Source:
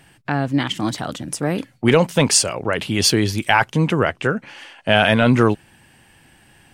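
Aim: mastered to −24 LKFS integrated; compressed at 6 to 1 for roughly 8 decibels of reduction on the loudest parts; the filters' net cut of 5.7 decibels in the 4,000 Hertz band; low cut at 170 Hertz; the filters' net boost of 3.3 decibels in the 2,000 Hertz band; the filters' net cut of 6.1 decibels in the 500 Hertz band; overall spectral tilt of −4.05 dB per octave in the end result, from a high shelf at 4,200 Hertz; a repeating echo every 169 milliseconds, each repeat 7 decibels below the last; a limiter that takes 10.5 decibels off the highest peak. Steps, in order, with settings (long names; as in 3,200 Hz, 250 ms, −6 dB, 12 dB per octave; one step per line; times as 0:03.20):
high-pass filter 170 Hz
parametric band 500 Hz −8 dB
parametric band 2,000 Hz +8 dB
parametric band 4,000 Hz −6.5 dB
high-shelf EQ 4,200 Hz −7.5 dB
downward compressor 6 to 1, threshold −19 dBFS
brickwall limiter −14.5 dBFS
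repeating echo 169 ms, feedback 45%, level −7 dB
level +2 dB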